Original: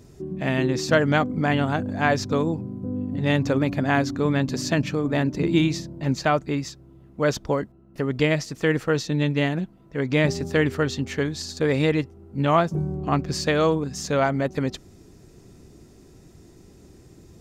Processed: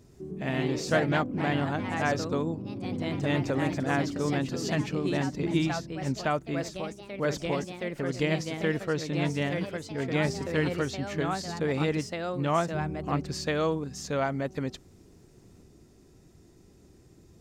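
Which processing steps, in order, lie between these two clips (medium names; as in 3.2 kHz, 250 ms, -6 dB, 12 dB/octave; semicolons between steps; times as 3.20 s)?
ever faster or slower copies 120 ms, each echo +2 st, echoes 3, each echo -6 dB; trim -7 dB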